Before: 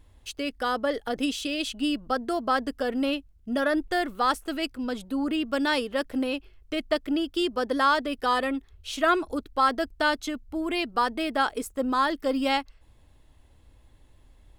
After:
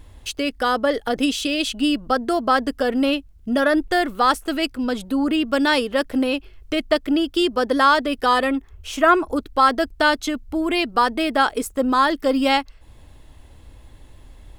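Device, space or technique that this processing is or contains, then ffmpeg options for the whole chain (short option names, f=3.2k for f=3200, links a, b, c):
parallel compression: -filter_complex "[0:a]asplit=2[a][b];[b]acompressor=threshold=-43dB:ratio=6,volume=-1.5dB[c];[a][c]amix=inputs=2:normalize=0,asettb=1/sr,asplit=3[d][e][f];[d]atrim=end=8.554[g];[e]atrim=start=8.55:end=9.36,asetpts=PTS-STARTPTS,afade=t=in:d=0.004:c=qsin,afade=t=out:st=0.806:d=0.004:c=qsin,equalizer=f=1k:t=o:w=0.67:g=3,equalizer=f=4k:t=o:w=0.67:g=-10,equalizer=f=10k:t=o:w=0.67:g=-4[h];[f]atrim=start=9.356[i];[g][h]acrossfade=d=0.004:c1=hsin:c2=qsin[j];[j][i]acrossfade=d=0.004:c1=qsin:c2=hsin,volume=6dB"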